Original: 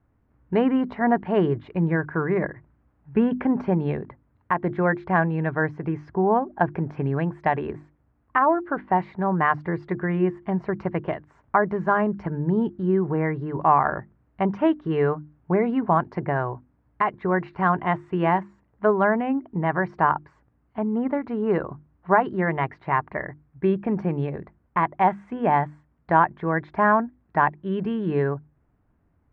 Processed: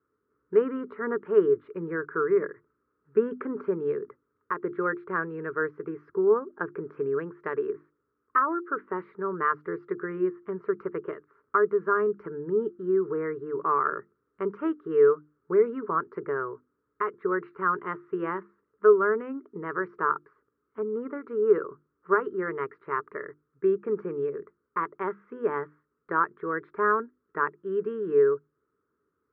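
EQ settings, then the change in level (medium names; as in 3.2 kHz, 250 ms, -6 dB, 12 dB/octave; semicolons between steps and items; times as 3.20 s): two resonant band-passes 740 Hz, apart 1.6 oct; +5.0 dB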